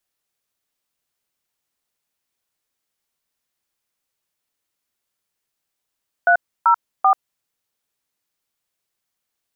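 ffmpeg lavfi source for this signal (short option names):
-f lavfi -i "aevalsrc='0.224*clip(min(mod(t,0.387),0.087-mod(t,0.387))/0.002,0,1)*(eq(floor(t/0.387),0)*(sin(2*PI*697*mod(t,0.387))+sin(2*PI*1477*mod(t,0.387)))+eq(floor(t/0.387),1)*(sin(2*PI*941*mod(t,0.387))+sin(2*PI*1336*mod(t,0.387)))+eq(floor(t/0.387),2)*(sin(2*PI*770*mod(t,0.387))+sin(2*PI*1209*mod(t,0.387))))':d=1.161:s=44100"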